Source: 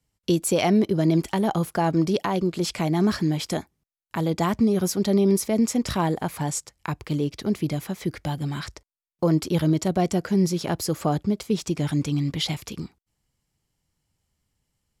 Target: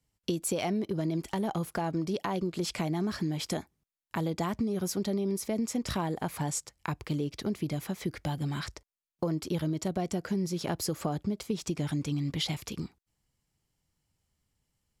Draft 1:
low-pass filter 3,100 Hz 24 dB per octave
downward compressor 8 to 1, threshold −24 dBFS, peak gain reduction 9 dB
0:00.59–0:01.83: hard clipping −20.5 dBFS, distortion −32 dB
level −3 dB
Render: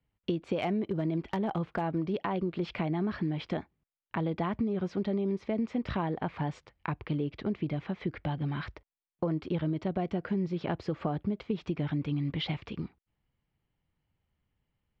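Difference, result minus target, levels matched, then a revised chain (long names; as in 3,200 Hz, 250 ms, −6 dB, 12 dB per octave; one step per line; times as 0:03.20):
4,000 Hz band −5.0 dB
downward compressor 8 to 1, threshold −24 dBFS, peak gain reduction 9 dB
0:00.59–0:01.83: hard clipping −20.5 dBFS, distortion −32 dB
level −3 dB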